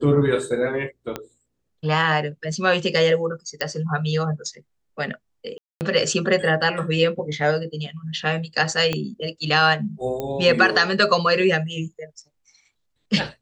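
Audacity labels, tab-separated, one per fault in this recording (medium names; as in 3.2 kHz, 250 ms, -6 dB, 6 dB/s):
1.160000	1.160000	pop -13 dBFS
3.610000	3.610000	pop -10 dBFS
5.580000	5.810000	dropout 229 ms
8.930000	8.930000	pop -10 dBFS
10.200000	10.200000	pop -15 dBFS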